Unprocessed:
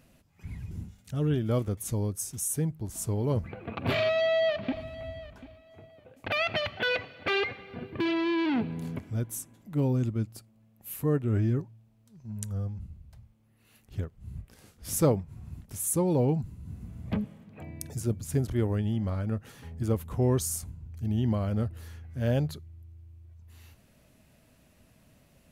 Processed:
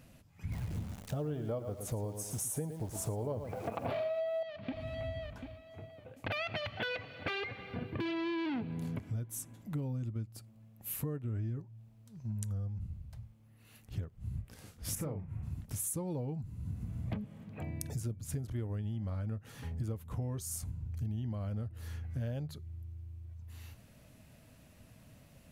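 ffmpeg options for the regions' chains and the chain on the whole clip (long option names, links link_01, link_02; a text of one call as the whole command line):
ffmpeg -i in.wav -filter_complex "[0:a]asettb=1/sr,asplit=3[link_01][link_02][link_03];[link_01]atrim=end=0.524[link_04];[link_02]atrim=start=0.52:end=4.43,asetpts=PTS-STARTPTS,afade=type=in:duration=0.004:curve=qsin,afade=type=out:start_time=3.906:duration=0.004:curve=qsin,equalizer=frequency=660:width_type=o:width=1.7:gain=15,aecho=1:1:113|226|339:0.299|0.0776|0.0202,atrim=end_sample=172431,acrusher=bits=9:dc=4:mix=0:aa=0.000001[link_05];[link_03]atrim=start=4.426[link_06];[link_04][link_05]acrossfade=duration=0.004:curve1=hsin:curve2=qsin[link_07];[link_07][link_06]acrossfade=duration=0.004:curve1=qsin:curve2=hsin,asettb=1/sr,asplit=3[link_08][link_09][link_10];[link_08]atrim=end=14.954[link_11];[link_09]atrim=start=14.95:end=15.43,asetpts=PTS-STARTPTS,afade=type=in:duration=0.004:curve=qsin,afade=type=out:start_time=0.476:duration=0.004:curve=qsin,highshelf=frequency=3100:width_type=q:width=1.5:gain=-9,acompressor=threshold=-32dB:ratio=2.5:attack=3.2:release=140:knee=1:detection=peak,asplit=2[link_12][link_13];[link_13]adelay=39,volume=-6dB[link_14];[link_12][link_14]amix=inputs=2:normalize=0,atrim=end_sample=21168[link_15];[link_10]atrim=start=15.426[link_16];[link_11][link_15]acrossfade=duration=0.004:curve1=hsin:curve2=qsin[link_17];[link_17][link_16]acrossfade=duration=0.004:curve1=qsin:curve2=hsin,equalizer=frequency=110:width_type=o:width=0.82:gain=5,bandreject=frequency=380:width=12,acompressor=threshold=-35dB:ratio=12,volume=1dB" out.wav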